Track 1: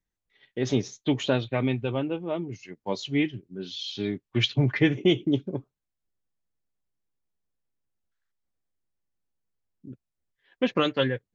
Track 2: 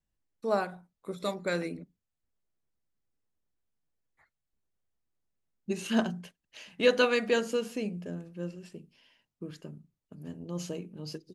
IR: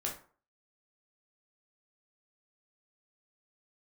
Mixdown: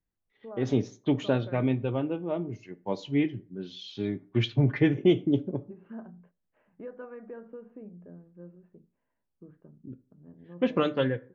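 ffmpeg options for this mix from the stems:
-filter_complex "[0:a]volume=-2dB,asplit=2[a][b];[b]volume=-12.5dB[c];[1:a]lowpass=f=1.6k:w=0.5412,lowpass=f=1.6k:w=1.3066,acompressor=threshold=-32dB:ratio=2.5,volume=-9.5dB,asplit=2[d][e];[e]volume=-23dB[f];[2:a]atrim=start_sample=2205[g];[c][f]amix=inputs=2:normalize=0[h];[h][g]afir=irnorm=-1:irlink=0[i];[a][d][i]amix=inputs=3:normalize=0,highshelf=f=2.3k:g=-12"

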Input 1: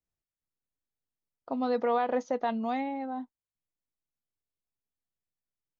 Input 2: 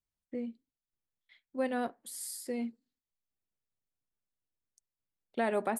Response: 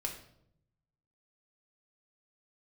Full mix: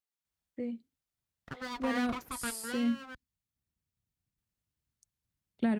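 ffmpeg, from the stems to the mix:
-filter_complex "[0:a]highpass=510,highshelf=f=2.8k:g=8,aeval=exprs='abs(val(0))':c=same,volume=-3dB,asplit=3[a][b][c];[a]atrim=end=3.15,asetpts=PTS-STARTPTS,afade=t=out:st=3.146:d=0.004:c=hsin[d];[b]atrim=start=3.15:end=4.38,asetpts=PTS-STARTPTS,volume=0[e];[c]atrim=start=4.38,asetpts=PTS-STARTPTS,afade=t=in:d=0.004:c=hsin[f];[d][e][f]concat=n=3:v=0:a=1[g];[1:a]asubboost=boost=8.5:cutoff=180,acrossover=split=340[h][i];[i]acompressor=threshold=-36dB:ratio=6[j];[h][j]amix=inputs=2:normalize=0,adelay=250,volume=1dB[k];[g][k]amix=inputs=2:normalize=0,highpass=50"

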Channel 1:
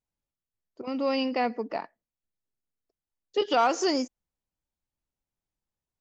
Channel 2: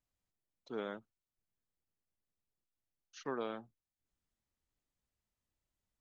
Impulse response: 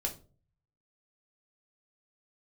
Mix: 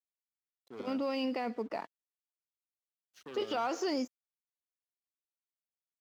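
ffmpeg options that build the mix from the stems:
-filter_complex "[0:a]alimiter=limit=-22.5dB:level=0:latency=1:release=19,volume=-2.5dB[a];[1:a]aeval=exprs='0.0447*sin(PI/2*2.24*val(0)/0.0447)':c=same,volume=-12.5dB[b];[a][b]amix=inputs=2:normalize=0,acrossover=split=5000[c][d];[d]acompressor=threshold=-53dB:ratio=4:attack=1:release=60[e];[c][e]amix=inputs=2:normalize=0,aeval=exprs='sgn(val(0))*max(abs(val(0))-0.00119,0)':c=same,highpass=69"

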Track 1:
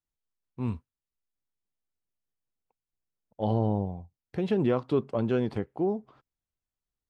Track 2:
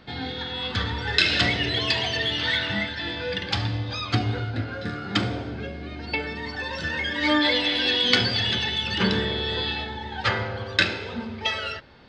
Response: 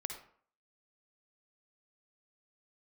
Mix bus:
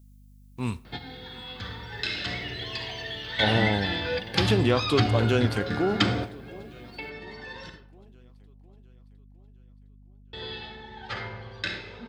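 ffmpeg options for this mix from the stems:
-filter_complex "[0:a]crystalizer=i=10:c=0,volume=-1dB,asplit=4[a][b][c][d];[b]volume=-13.5dB[e];[c]volume=-18dB[f];[1:a]adelay=850,volume=-1.5dB,asplit=3[g][h][i];[g]atrim=end=7.7,asetpts=PTS-STARTPTS,afade=t=out:st=7.696:d=0.004:c=hsin[j];[h]atrim=start=7.7:end=10.33,asetpts=PTS-STARTPTS,volume=0[k];[i]atrim=start=10.33,asetpts=PTS-STARTPTS,afade=t=in:d=0.004:c=hsin[l];[j][k][l]concat=n=3:v=0:a=1,asplit=2[m][n];[n]volume=-8.5dB[o];[d]apad=whole_len=570535[p];[m][p]sidechaingate=range=-33dB:threshold=-59dB:ratio=16:detection=peak[q];[2:a]atrim=start_sample=2205[r];[e][o]amix=inputs=2:normalize=0[s];[s][r]afir=irnorm=-1:irlink=0[t];[f]aecho=0:1:709|1418|2127|2836|3545|4254|4963:1|0.51|0.26|0.133|0.0677|0.0345|0.0176[u];[a][q][t][u]amix=inputs=4:normalize=0,aeval=exprs='val(0)+0.00282*(sin(2*PI*50*n/s)+sin(2*PI*2*50*n/s)/2+sin(2*PI*3*50*n/s)/3+sin(2*PI*4*50*n/s)/4+sin(2*PI*5*50*n/s)/5)':c=same"

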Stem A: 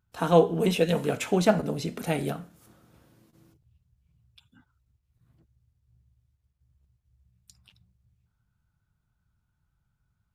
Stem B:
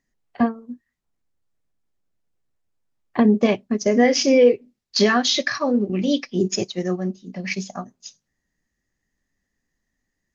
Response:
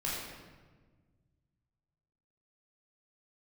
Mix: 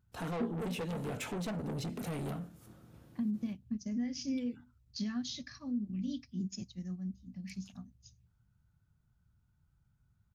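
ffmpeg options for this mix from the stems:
-filter_complex "[0:a]equalizer=f=110:w=0.32:g=7,acompressor=threshold=-23dB:ratio=3,asoftclip=type=tanh:threshold=-31dB,volume=-3.5dB[a];[1:a]firequalizer=gain_entry='entry(250,0);entry(380,-24);entry(860,-18);entry(4500,-8)':delay=0.05:min_phase=1,alimiter=limit=-15.5dB:level=0:latency=1:release=225,volume=-12.5dB[b];[a][b]amix=inputs=2:normalize=0"

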